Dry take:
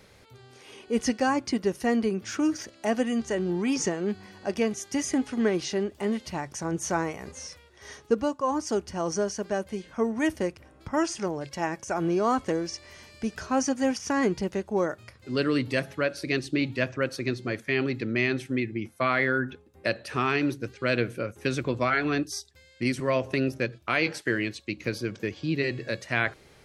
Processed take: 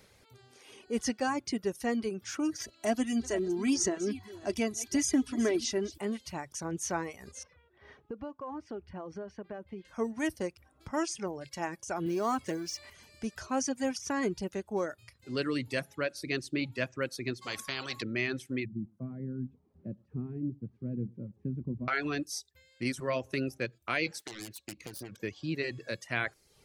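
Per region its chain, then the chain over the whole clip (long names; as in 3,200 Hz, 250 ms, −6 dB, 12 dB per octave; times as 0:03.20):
0:02.60–0:05.98: delay that plays each chunk backwards 265 ms, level −13.5 dB + bass and treble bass +6 dB, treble +3 dB + comb filter 3 ms, depth 63%
0:07.43–0:09.85: high-frequency loss of the air 430 metres + downward compressor 5 to 1, threshold −30 dBFS
0:12.06–0:12.90: mu-law and A-law mismatch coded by mu + high-pass filter 96 Hz + notch filter 500 Hz, Q 9.5
0:17.41–0:18.01: steady tone 1,100 Hz −43 dBFS + every bin compressed towards the loudest bin 4 to 1
0:18.65–0:21.88: spike at every zero crossing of −21 dBFS + low-pass with resonance 200 Hz, resonance Q 2.3 + single-tap delay 108 ms −18 dB
0:24.19–0:25.21: phase distortion by the signal itself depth 0.51 ms + downward compressor 20 to 1, threshold −31 dBFS
whole clip: high-shelf EQ 5,800 Hz +6.5 dB; reverb reduction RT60 0.58 s; level −6 dB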